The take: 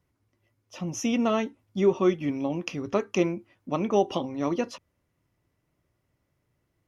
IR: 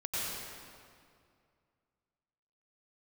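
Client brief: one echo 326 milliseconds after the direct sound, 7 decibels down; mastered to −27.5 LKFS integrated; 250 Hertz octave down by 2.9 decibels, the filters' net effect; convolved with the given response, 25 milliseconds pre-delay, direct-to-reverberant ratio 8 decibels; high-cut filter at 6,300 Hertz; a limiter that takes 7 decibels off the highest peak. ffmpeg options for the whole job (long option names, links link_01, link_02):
-filter_complex "[0:a]lowpass=6300,equalizer=frequency=250:width_type=o:gain=-4,alimiter=limit=-18dB:level=0:latency=1,aecho=1:1:326:0.447,asplit=2[link_01][link_02];[1:a]atrim=start_sample=2205,adelay=25[link_03];[link_02][link_03]afir=irnorm=-1:irlink=0,volume=-13.5dB[link_04];[link_01][link_04]amix=inputs=2:normalize=0,volume=2.5dB"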